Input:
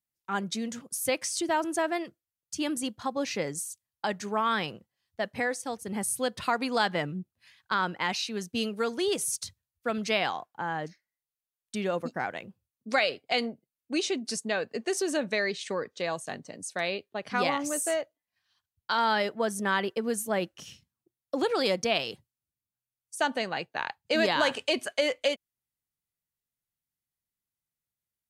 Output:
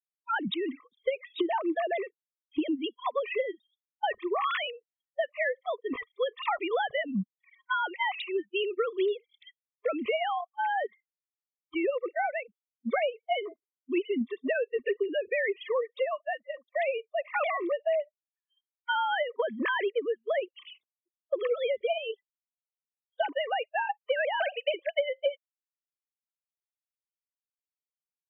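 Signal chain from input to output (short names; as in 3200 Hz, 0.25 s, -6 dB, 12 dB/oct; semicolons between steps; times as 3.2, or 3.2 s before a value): sine-wave speech; spectral noise reduction 30 dB; compressor 10:1, threshold -34 dBFS, peak gain reduction 21 dB; gain +8.5 dB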